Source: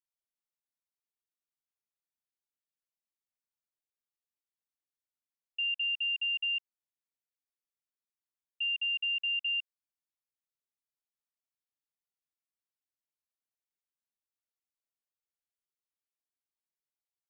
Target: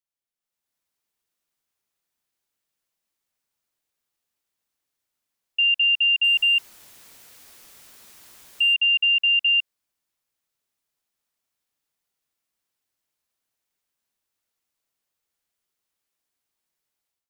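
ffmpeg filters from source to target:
ffmpeg -i in.wav -filter_complex "[0:a]asettb=1/sr,asplit=3[link_01][link_02][link_03];[link_01]atrim=end=6.244[link_04];[link_02]atrim=start=6.24:end=8.74,asetpts=PTS-STARTPTS,afade=type=in:duration=0.004:curve=qsin,afade=type=out:start_time=2.496:duration=0.004:curve=qsin,aeval=exprs='val(0)+0.5*0.00266*sgn(val(0))':channel_layout=same[link_05];[link_03]atrim=start=8.736[link_06];[link_04][link_05]acrossfade=duration=0.004:curve1=hsin:curve2=qsin[link_07];[link_07][link_06]acrossfade=duration=0.004:curve1=qsin:curve2=hsin,dynaudnorm=framelen=380:gausssize=3:maxgain=12.5dB" out.wav

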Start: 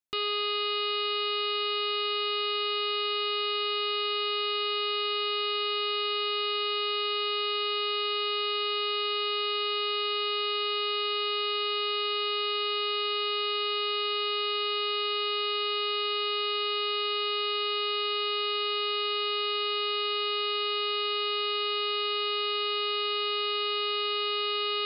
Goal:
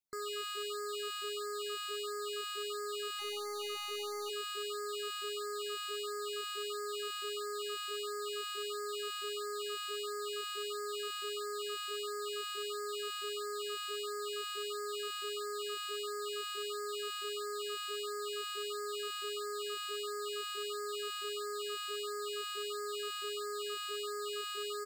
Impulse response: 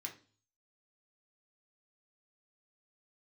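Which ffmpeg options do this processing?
-filter_complex "[0:a]asplit=2[link_01][link_02];[link_02]adelay=292,lowpass=frequency=1600:poles=1,volume=-20.5dB,asplit=2[link_03][link_04];[link_04]adelay=292,lowpass=frequency=1600:poles=1,volume=0.43,asplit=2[link_05][link_06];[link_06]adelay=292,lowpass=frequency=1600:poles=1,volume=0.43[link_07];[link_03][link_05][link_07]amix=inputs=3:normalize=0[link_08];[link_01][link_08]amix=inputs=2:normalize=0,asplit=3[link_09][link_10][link_11];[link_09]afade=type=out:start_time=3.18:duration=0.02[link_12];[link_10]asubboost=boost=10.5:cutoff=210,afade=type=in:start_time=3.18:duration=0.02,afade=type=out:start_time=4.29:duration=0.02[link_13];[link_11]afade=type=in:start_time=4.29:duration=0.02[link_14];[link_12][link_13][link_14]amix=inputs=3:normalize=0,asoftclip=type=hard:threshold=-34.5dB,afftfilt=real='re*(1-between(b*sr/1024,470*pow(3100/470,0.5+0.5*sin(2*PI*1.5*pts/sr))/1.41,470*pow(3100/470,0.5+0.5*sin(2*PI*1.5*pts/sr))*1.41))':imag='im*(1-between(b*sr/1024,470*pow(3100/470,0.5+0.5*sin(2*PI*1.5*pts/sr))/1.41,470*pow(3100/470,0.5+0.5*sin(2*PI*1.5*pts/sr))*1.41))':win_size=1024:overlap=0.75,volume=-2.5dB"

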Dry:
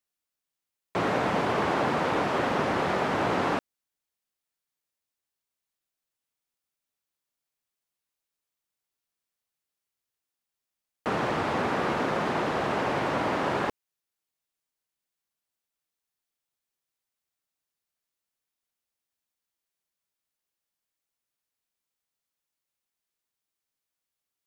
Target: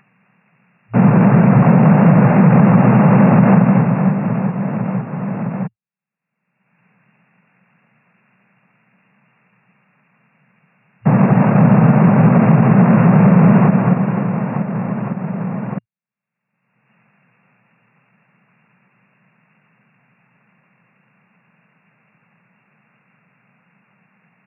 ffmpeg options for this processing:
ffmpeg -i in.wav -af "lowshelf=frequency=380:width_type=q:width=3:gain=8,agate=range=-33dB:threshold=-21dB:ratio=3:detection=peak,asetrate=28595,aresample=44100,atempo=1.54221,aecho=1:1:230|529|917.7|1423|2080:0.631|0.398|0.251|0.158|0.1,acompressor=mode=upward:threshold=-24dB:ratio=2.5,afftfilt=real='re*between(b*sr/4096,110,2800)':imag='im*between(b*sr/4096,110,2800)':win_size=4096:overlap=0.75,alimiter=level_in=13dB:limit=-1dB:release=50:level=0:latency=1,volume=-1dB" out.wav

